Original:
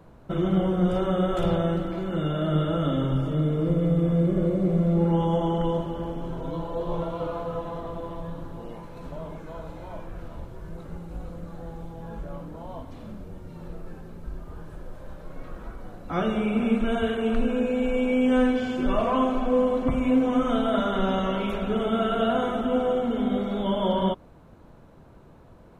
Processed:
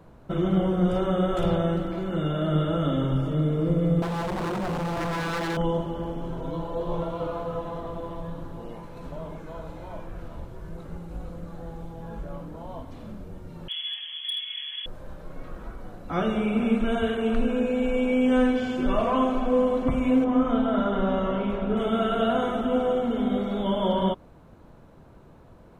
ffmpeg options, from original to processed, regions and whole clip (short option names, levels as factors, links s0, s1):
-filter_complex "[0:a]asettb=1/sr,asplit=3[s0][s1][s2];[s0]atrim=end=4.024[s3];[s1]atrim=start=4.02:end=5.57,asetpts=PTS-STARTPTS,afade=t=in:d=0.004:c=qsin,afade=t=out:st=1.546:d=0.004:c=qsin,highpass=f=62:w=0.5412,highpass=f=62:w=1.3066,aeval=exprs='0.0631*(abs(mod(val(0)/0.0631+3,4)-2)-1)':c=same,highshelf=f=2500:g=8.5[s4];[s2]atrim=start=5.566[s5];[s3][s4]acrossfade=d=0.004:c1=hsin:c2=qsin[s6];[s6][s5]acrossfade=d=0.004:c1=qsin:c2=hsin,asettb=1/sr,asplit=3[s7][s8][s9];[s7]atrim=end=13.684[s10];[s8]atrim=start=13.68:end=14.86,asetpts=PTS-STARTPTS,afade=t=in:d=0.004:c=qsin,afade=t=out:st=1.176:d=0.004:c=qsin,lowpass=f=2900:t=q:w=0.5098,lowpass=f=2900:t=q:w=0.6013,lowpass=f=2900:t=q:w=0.9,lowpass=f=2900:t=q:w=2.563,afreqshift=-3400,equalizer=f=1500:t=o:w=2.1:g=6.5,volume=16.8,asoftclip=hard,volume=0.0596[s11];[s9]atrim=start=14.856[s12];[s10][s11]acrossfade=d=0.004:c1=hsin:c2=qsin[s13];[s13][s12]acrossfade=d=0.004:c1=qsin:c2=hsin,asettb=1/sr,asplit=3[s14][s15][s16];[s14]atrim=end=20.244[s17];[s15]atrim=start=20.24:end=21.77,asetpts=PTS-STARTPTS,afade=t=in:d=0.004:c=qsin,afade=t=out:st=1.526:d=0.004:c=qsin,lowpass=f=1400:p=1,asplit=2[s18][s19];[s19]adelay=35,volume=0.473[s20];[s18][s20]amix=inputs=2:normalize=0,atrim=end_sample=67473[s21];[s16]atrim=start=21.766[s22];[s17][s21]acrossfade=d=0.004:c1=hsin:c2=qsin[s23];[s23][s22]acrossfade=d=0.004:c1=qsin:c2=hsin"